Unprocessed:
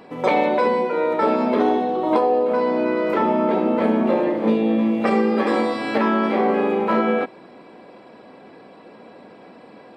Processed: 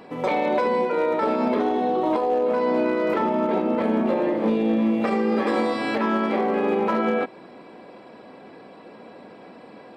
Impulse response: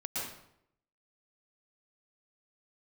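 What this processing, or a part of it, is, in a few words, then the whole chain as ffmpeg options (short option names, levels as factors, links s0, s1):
limiter into clipper: -af "alimiter=limit=0.224:level=0:latency=1:release=153,asoftclip=type=hard:threshold=0.188"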